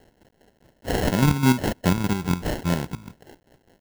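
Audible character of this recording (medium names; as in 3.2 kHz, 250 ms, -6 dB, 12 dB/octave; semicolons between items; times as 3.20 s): phasing stages 4, 2.9 Hz, lowest notch 580–1900 Hz; a quantiser's noise floor 10-bit, dither triangular; chopped level 4.9 Hz, depth 60%, duty 45%; aliases and images of a low sample rate 1.2 kHz, jitter 0%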